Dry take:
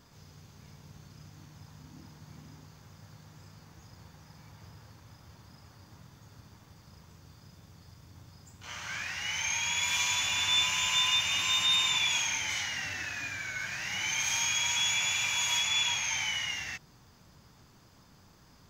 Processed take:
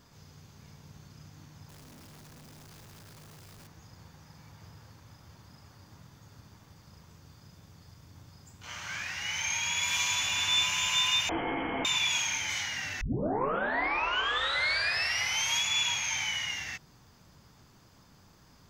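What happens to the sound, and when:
1.69–3.67 s: one-bit comparator
11.29–11.85 s: frequency inversion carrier 3.2 kHz
13.01 s: tape start 2.59 s

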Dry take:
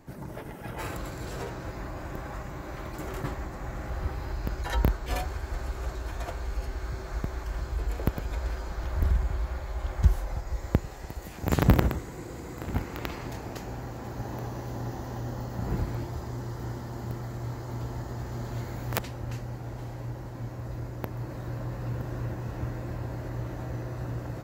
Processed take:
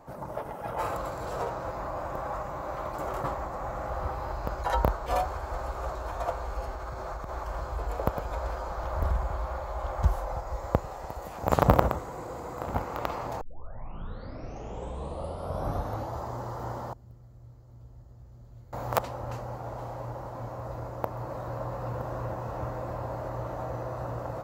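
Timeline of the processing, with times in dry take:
6.71–7.29 s: compression, threshold -31 dBFS
13.41 s: tape start 2.79 s
16.93–18.73 s: amplifier tone stack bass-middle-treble 10-0-1
whole clip: high-order bell 800 Hz +12 dB; trim -3.5 dB

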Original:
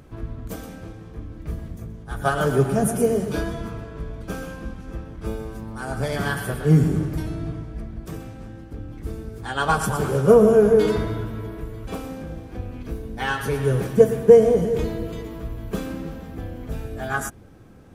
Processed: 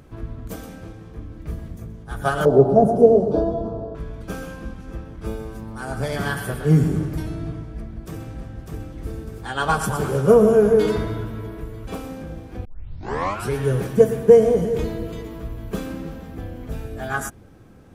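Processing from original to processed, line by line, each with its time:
2.45–3.95 s: FFT filter 140 Hz 0 dB, 680 Hz +11 dB, 2.1 kHz -24 dB, 4.2 kHz -10 dB, 14 kHz -29 dB
7.55–8.64 s: echo throw 600 ms, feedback 45%, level -3.5 dB
12.65 s: tape start 0.90 s

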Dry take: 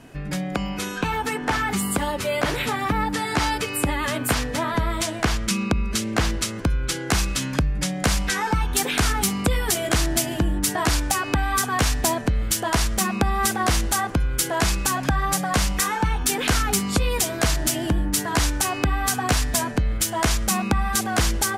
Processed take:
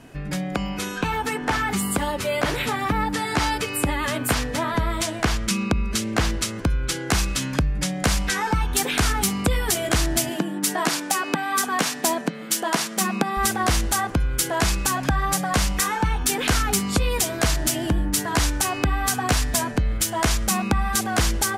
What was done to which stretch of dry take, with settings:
10.30–13.37 s: brick-wall FIR high-pass 150 Hz

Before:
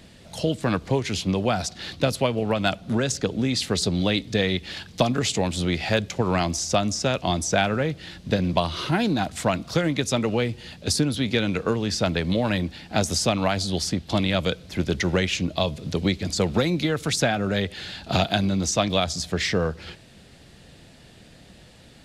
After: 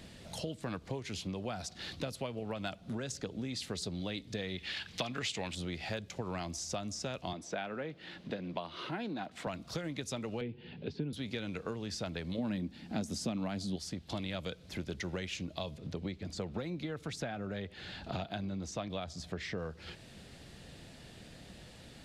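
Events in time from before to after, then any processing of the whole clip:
4.58–5.55 s: peaking EQ 2.4 kHz +11 dB 2.3 oct
7.33–9.47 s: three-band isolator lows -18 dB, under 170 Hz, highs -14 dB, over 3.9 kHz
10.41–11.13 s: cabinet simulation 110–3000 Hz, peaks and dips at 150 Hz +7 dB, 240 Hz +4 dB, 410 Hz +9 dB, 630 Hz -7 dB, 1.2 kHz -10 dB, 1.9 kHz -5 dB
12.38–13.76 s: peaking EQ 230 Hz +12.5 dB 1.2 oct
15.77–19.58 s: treble shelf 3.9 kHz -11 dB
whole clip: compression 2.5:1, threshold -39 dBFS; trim -3 dB

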